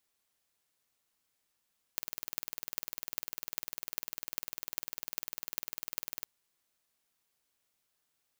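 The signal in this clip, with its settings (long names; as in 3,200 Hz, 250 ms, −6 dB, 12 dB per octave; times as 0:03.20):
impulse train 20 per second, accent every 8, −4 dBFS 4.30 s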